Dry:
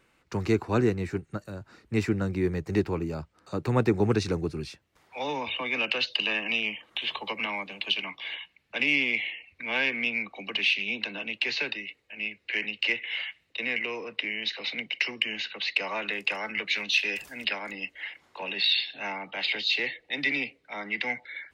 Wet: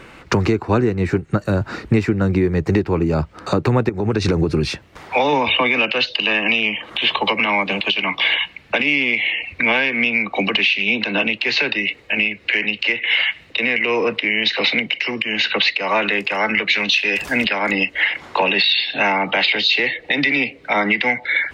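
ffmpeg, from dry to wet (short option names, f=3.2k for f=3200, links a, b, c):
-filter_complex "[0:a]asettb=1/sr,asplit=3[a][b][c];[a]atrim=end=3.894[d];[b]atrim=start=3.89:end=5.33,asetpts=PTS-STARTPTS,afade=t=in:d=0.004:c=qsin,afade=t=out:st=1.436:d=0.004:c=qsin,acompressor=threshold=-30dB:ratio=6:attack=3.2:release=140:knee=1:detection=peak[e];[c]atrim=start=5.326[f];[d][e]acrossfade=d=0.004:c1=hsin:c2=qsin[g];[g][f]acrossfade=d=0.004:c1=qsin:c2=hsin,lowpass=f=3.2k:p=1,acompressor=threshold=-39dB:ratio=10,alimiter=level_in=30dB:limit=-1dB:release=50:level=0:latency=1,volume=-4.5dB"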